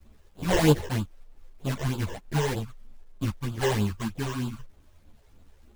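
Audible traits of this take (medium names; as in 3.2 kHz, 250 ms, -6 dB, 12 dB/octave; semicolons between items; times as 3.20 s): aliases and images of a low sample rate 1.3 kHz, jitter 20%; phasing stages 12, 3.2 Hz, lowest notch 220–2000 Hz; a quantiser's noise floor 12-bit, dither none; a shimmering, thickened sound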